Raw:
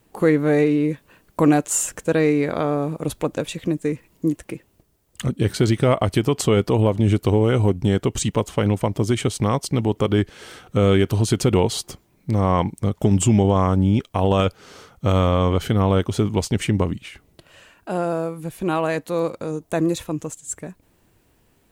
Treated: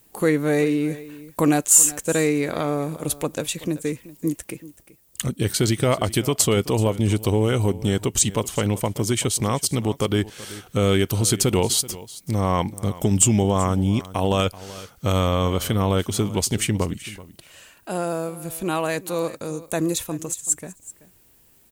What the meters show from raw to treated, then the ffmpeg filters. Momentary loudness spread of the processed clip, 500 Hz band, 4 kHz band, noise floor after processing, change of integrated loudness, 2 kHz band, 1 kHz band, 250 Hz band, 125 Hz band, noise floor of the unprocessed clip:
11 LU, -2.5 dB, +3.0 dB, -56 dBFS, -1.0 dB, 0.0 dB, -2.0 dB, -3.0 dB, -3.0 dB, -61 dBFS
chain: -af "aecho=1:1:381:0.126,crystalizer=i=3:c=0,volume=-3dB"

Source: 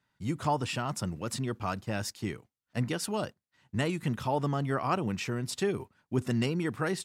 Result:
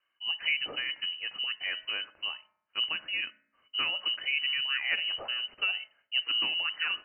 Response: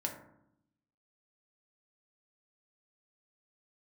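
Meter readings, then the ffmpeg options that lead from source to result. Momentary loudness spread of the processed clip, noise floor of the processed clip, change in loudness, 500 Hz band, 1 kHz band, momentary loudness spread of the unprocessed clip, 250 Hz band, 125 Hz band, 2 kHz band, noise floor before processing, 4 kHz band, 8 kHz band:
8 LU, -79 dBFS, +2.5 dB, -18.0 dB, -11.5 dB, 7 LU, -25.0 dB, under -30 dB, +8.5 dB, -85 dBFS, +14.5 dB, under -40 dB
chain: -filter_complex "[0:a]lowpass=f=2.6k:t=q:w=0.5098,lowpass=f=2.6k:t=q:w=0.6013,lowpass=f=2.6k:t=q:w=0.9,lowpass=f=2.6k:t=q:w=2.563,afreqshift=-3100,bandreject=f=212.9:t=h:w=4,bandreject=f=425.8:t=h:w=4,bandreject=f=638.7:t=h:w=4,bandreject=f=851.6:t=h:w=4,bandreject=f=1.0645k:t=h:w=4,bandreject=f=1.2774k:t=h:w=4,bandreject=f=1.4903k:t=h:w=4,bandreject=f=1.7032k:t=h:w=4,bandreject=f=1.9161k:t=h:w=4,bandreject=f=2.129k:t=h:w=4,bandreject=f=2.3419k:t=h:w=4,bandreject=f=2.5548k:t=h:w=4,asplit=2[a][b];[1:a]atrim=start_sample=2205[c];[b][c]afir=irnorm=-1:irlink=0,volume=-13.5dB[d];[a][d]amix=inputs=2:normalize=0,volume=-2.5dB"

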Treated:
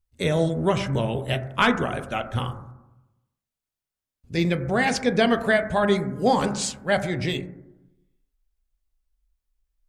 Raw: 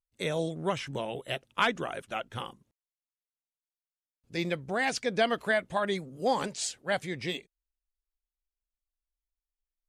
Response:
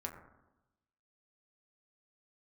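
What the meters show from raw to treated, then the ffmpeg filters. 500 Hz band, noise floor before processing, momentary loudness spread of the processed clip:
+7.5 dB, under -85 dBFS, 8 LU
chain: -filter_complex "[0:a]lowshelf=f=180:g=12,asplit=2[a][b];[1:a]atrim=start_sample=2205,lowshelf=f=140:g=4.5[c];[b][c]afir=irnorm=-1:irlink=0,volume=2dB[d];[a][d]amix=inputs=2:normalize=0"

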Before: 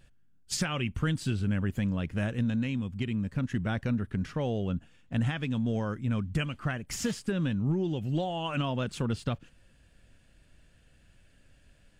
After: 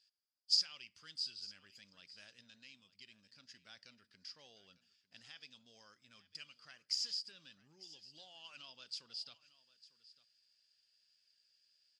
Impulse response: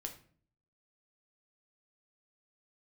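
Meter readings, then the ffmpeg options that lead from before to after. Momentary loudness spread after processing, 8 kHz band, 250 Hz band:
23 LU, -9.5 dB, -40.0 dB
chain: -filter_complex "[0:a]asoftclip=type=tanh:threshold=-18dB,bandpass=f=4.9k:t=q:w=18:csg=0,aecho=1:1:900:0.119,asplit=2[a][b];[1:a]atrim=start_sample=2205[c];[b][c]afir=irnorm=-1:irlink=0,volume=-10.5dB[d];[a][d]amix=inputs=2:normalize=0,volume=11dB"

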